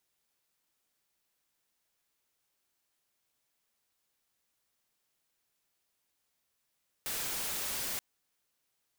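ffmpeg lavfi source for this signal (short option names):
-f lavfi -i "anoisesrc=c=white:a=0.0274:d=0.93:r=44100:seed=1"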